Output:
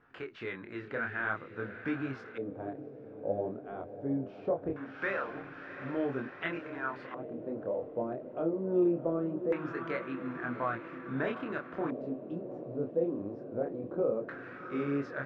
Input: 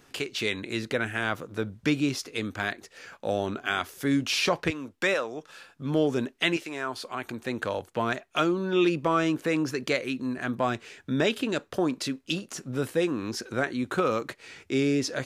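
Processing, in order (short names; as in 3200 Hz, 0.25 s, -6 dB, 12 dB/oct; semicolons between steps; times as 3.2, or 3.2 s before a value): chorus 0.49 Hz, depth 7.6 ms; diffused feedback echo 0.741 s, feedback 68%, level -11 dB; LFO low-pass square 0.21 Hz 570–1500 Hz; gain -6.5 dB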